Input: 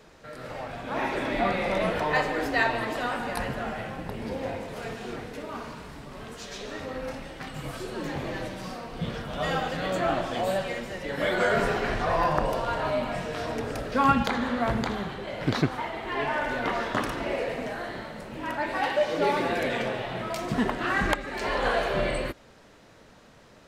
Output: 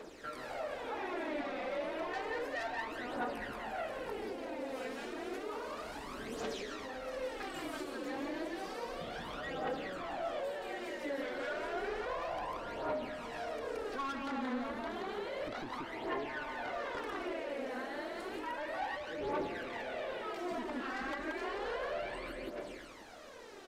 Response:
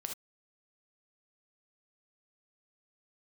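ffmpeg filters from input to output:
-filter_complex "[0:a]lowshelf=frequency=210:width_type=q:width=1.5:gain=-11.5,asplit=2[link_01][link_02];[link_02]aecho=0:1:531:0.0841[link_03];[link_01][link_03]amix=inputs=2:normalize=0,acrossover=split=3100[link_04][link_05];[link_05]acompressor=threshold=-46dB:ratio=4:attack=1:release=60[link_06];[link_04][link_06]amix=inputs=2:normalize=0,asplit=2[link_07][link_08];[link_08]aecho=0:1:178:0.562[link_09];[link_07][link_09]amix=inputs=2:normalize=0,asoftclip=type=tanh:threshold=-23.5dB,acompressor=threshold=-39dB:ratio=6,aphaser=in_gain=1:out_gain=1:delay=4:decay=0.58:speed=0.31:type=triangular,volume=-1dB"

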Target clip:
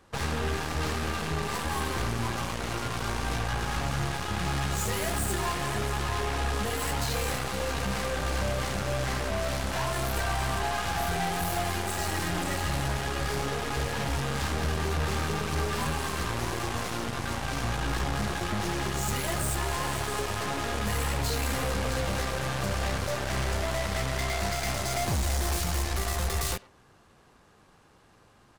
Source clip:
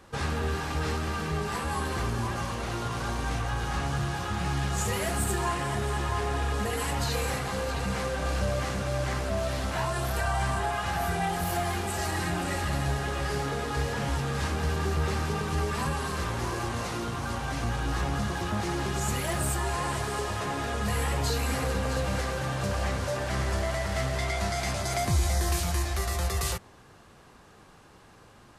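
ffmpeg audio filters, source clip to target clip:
ffmpeg -i in.wav -filter_complex "[0:a]asoftclip=type=tanh:threshold=-24dB,asplit=2[link_01][link_02];[link_02]adelay=100,highpass=300,lowpass=3400,asoftclip=type=hard:threshold=-33dB,volume=-11dB[link_03];[link_01][link_03]amix=inputs=2:normalize=0,aeval=exprs='0.0708*(cos(1*acos(clip(val(0)/0.0708,-1,1)))-cos(1*PI/2))+0.0316*(cos(2*acos(clip(val(0)/0.0708,-1,1)))-cos(2*PI/2))+0.0224*(cos(4*acos(clip(val(0)/0.0708,-1,1)))-cos(4*PI/2))+0.0158*(cos(7*acos(clip(val(0)/0.0708,-1,1)))-cos(7*PI/2))':channel_layout=same" out.wav

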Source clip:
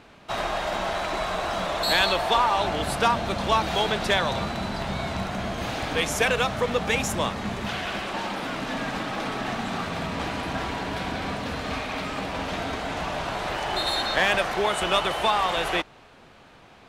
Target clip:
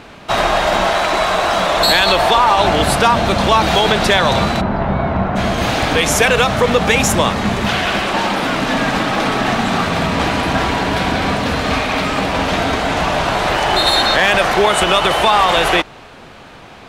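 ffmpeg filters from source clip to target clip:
ffmpeg -i in.wav -filter_complex "[0:a]asettb=1/sr,asplit=3[link_01][link_02][link_03];[link_01]atrim=end=0.874[link_04];[link_02]atrim=start=0.87:end=1.77,asetpts=PTS-STARTPTS,afade=type=in:duration=0.004:curve=qsin,afade=type=out:start_time=0.896:duration=0.004:curve=qsin,lowshelf=frequency=230:gain=-6.5[link_05];[link_03]atrim=start=1.766[link_06];[link_04][link_05]acrossfade=duration=0.004:curve1=hsin:curve2=qsin[link_07];[link_07][link_06]acrossfade=duration=0.004:curve1=qsin:curve2=hsin,asplit=3[link_08][link_09][link_10];[link_08]afade=type=out:start_time=4.6:duration=0.02[link_11];[link_09]lowpass=1400,afade=type=in:start_time=4.6:duration=0.02,afade=type=out:start_time=5.35:duration=0.02[link_12];[link_10]afade=type=in:start_time=5.35:duration=0.02[link_13];[link_11][link_12][link_13]amix=inputs=3:normalize=0,alimiter=level_in=15dB:limit=-1dB:release=50:level=0:latency=1,volume=-2dB" out.wav

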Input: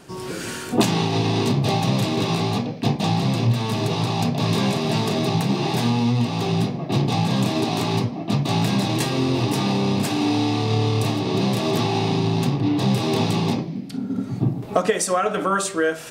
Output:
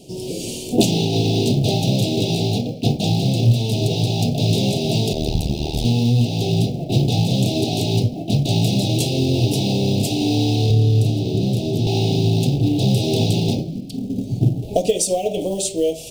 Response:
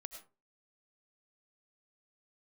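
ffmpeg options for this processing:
-filter_complex "[0:a]asplit=2[link_01][link_02];[link_02]acrusher=bits=3:mode=log:mix=0:aa=0.000001,volume=-11dB[link_03];[link_01][link_03]amix=inputs=2:normalize=0,asuperstop=centerf=1400:order=8:qfactor=0.67,asettb=1/sr,asplit=3[link_04][link_05][link_06];[link_04]atrim=end=5.134[link_07];[link_05]atrim=start=5.13:end=5.85,asetpts=PTS-STARTPTS,afade=type=in:duration=0.004:curve=qsin,afade=type=out:start_time=0.716:duration=0.004:curve=qsin,tremolo=f=76:d=0.947[link_08];[link_06]atrim=start=5.846[link_09];[link_07][link_08]acrossfade=duration=0.004:curve1=hsin:curve2=qsin[link_10];[link_10][link_09]acrossfade=duration=0.004:curve1=qsin:curve2=hsin,asettb=1/sr,asplit=3[link_11][link_12][link_13];[link_11]atrim=end=10.704[link_14];[link_12]atrim=start=10.7:end=11.87,asetpts=PTS-STARTPTS,afade=type=in:duration=0.004:curve=qsin,afade=type=out:start_time=1.166:duration=0.004:curve=qsin,acrossover=split=410[link_15][link_16];[link_16]acompressor=threshold=-32dB:ratio=6[link_17];[link_15][link_17]amix=inputs=2:normalize=0[link_18];[link_13]atrim=start=11.866[link_19];[link_14][link_18]acrossfade=duration=0.004:curve1=hsin:curve2=qsin[link_20];[link_20][link_19]acrossfade=duration=0.004:curve1=qsin:curve2=hsin,asubboost=boost=5:cutoff=79,volume=1.5dB"

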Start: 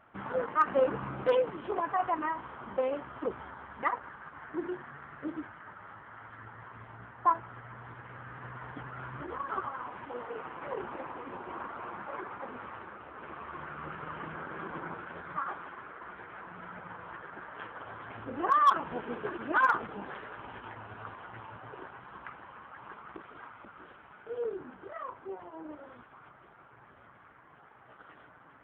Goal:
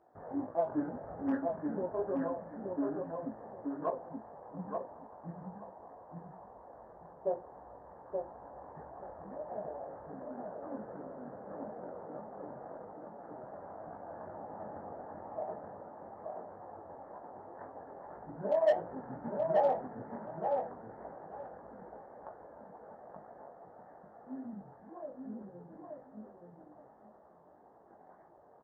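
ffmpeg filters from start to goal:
ffmpeg -i in.wav -filter_complex "[0:a]highpass=frequency=440:poles=1,highshelf=frequency=4900:gain=8.5,flanger=delay=9.1:depth=5.9:regen=80:speed=0.21:shape=triangular,asetrate=24046,aresample=44100,atempo=1.83401,flanger=delay=17.5:depth=5.8:speed=1.8,adynamicsmooth=sensitivity=5:basefreq=4400,asplit=2[link_01][link_02];[link_02]adelay=877,lowpass=frequency=2400:poles=1,volume=-3.5dB,asplit=2[link_03][link_04];[link_04]adelay=877,lowpass=frequency=2400:poles=1,volume=0.19,asplit=2[link_05][link_06];[link_06]adelay=877,lowpass=frequency=2400:poles=1,volume=0.19[link_07];[link_03][link_05][link_07]amix=inputs=3:normalize=0[link_08];[link_01][link_08]amix=inputs=2:normalize=0,volume=3.5dB" out.wav

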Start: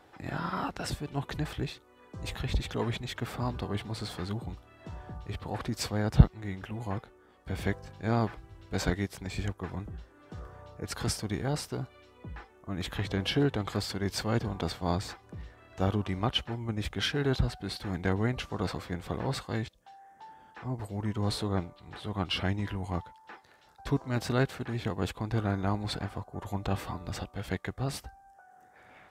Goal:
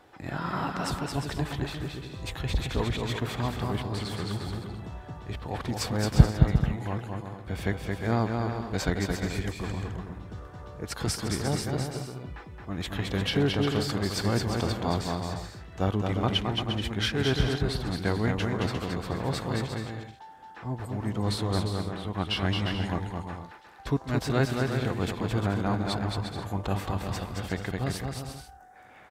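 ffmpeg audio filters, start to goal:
ffmpeg -i in.wav -af "aecho=1:1:220|352|431.2|478.7|507.2:0.631|0.398|0.251|0.158|0.1,volume=1.5dB" out.wav

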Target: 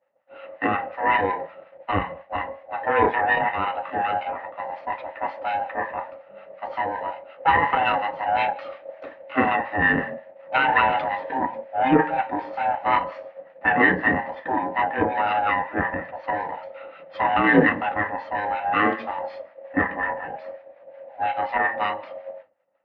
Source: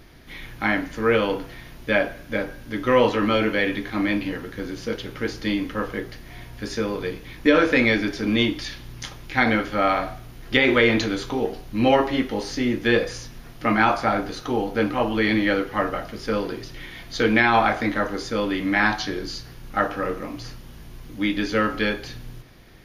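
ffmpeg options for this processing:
ffmpeg -i in.wav -filter_complex "[0:a]afftfilt=real='real(if(lt(b,1008),b+24*(1-2*mod(floor(b/24),2)),b),0)':imag='imag(if(lt(b,1008),b+24*(1-2*mod(floor(b/24),2)),b),0)':win_size=2048:overlap=0.75,agate=range=-33dB:threshold=-33dB:ratio=3:detection=peak,acrossover=split=880[link_01][link_02];[link_01]aeval=exprs='val(0)*(1-0.7/2+0.7/2*cos(2*PI*5.5*n/s))':channel_layout=same[link_03];[link_02]aeval=exprs='val(0)*(1-0.7/2-0.7/2*cos(2*PI*5.5*n/s))':channel_layout=same[link_04];[link_03][link_04]amix=inputs=2:normalize=0,aeval=exprs='0.501*(cos(1*acos(clip(val(0)/0.501,-1,1)))-cos(1*PI/2))+0.0447*(cos(6*acos(clip(val(0)/0.501,-1,1)))-cos(6*PI/2))':channel_layout=same,highpass=120,equalizer=frequency=130:width_type=q:width=4:gain=-5,equalizer=frequency=300:width_type=q:width=4:gain=6,equalizer=frequency=490:width_type=q:width=4:gain=9,equalizer=frequency=1900:width_type=q:width=4:gain=6,lowpass=frequency=2300:width=0.5412,lowpass=frequency=2300:width=1.3066,volume=1.5dB" out.wav

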